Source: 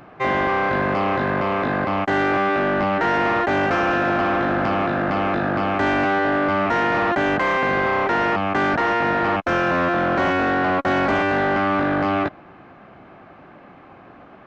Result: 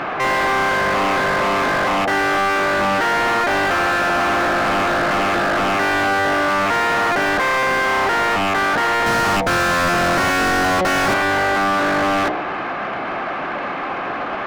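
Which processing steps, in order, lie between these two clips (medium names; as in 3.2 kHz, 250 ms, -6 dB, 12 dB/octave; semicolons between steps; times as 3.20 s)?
treble shelf 2 kHz +8.5 dB; de-hum 61.4 Hz, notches 15; overdrive pedal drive 36 dB, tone 1.7 kHz, clips at -6.5 dBFS; 9.06–11.14 s: tone controls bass +7 dB, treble +7 dB; trim -4 dB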